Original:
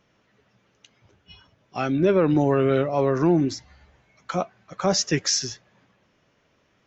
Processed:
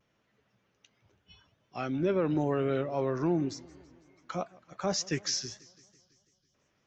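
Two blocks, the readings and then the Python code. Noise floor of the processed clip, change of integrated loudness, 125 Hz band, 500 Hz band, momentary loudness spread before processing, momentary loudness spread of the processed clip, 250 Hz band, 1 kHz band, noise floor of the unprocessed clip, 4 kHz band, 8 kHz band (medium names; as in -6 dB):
-75 dBFS, -9.0 dB, -9.0 dB, -9.0 dB, 15 LU, 14 LU, -9.0 dB, -9.0 dB, -66 dBFS, -8.5 dB, no reading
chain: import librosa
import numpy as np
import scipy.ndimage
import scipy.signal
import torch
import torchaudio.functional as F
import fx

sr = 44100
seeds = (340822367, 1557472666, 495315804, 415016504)

y = fx.vibrato(x, sr, rate_hz=0.9, depth_cents=41.0)
y = fx.spec_erase(y, sr, start_s=5.59, length_s=0.95, low_hz=230.0, high_hz=2900.0)
y = fx.echo_warbled(y, sr, ms=165, feedback_pct=63, rate_hz=2.8, cents=194, wet_db=-23)
y = y * 10.0 ** (-9.0 / 20.0)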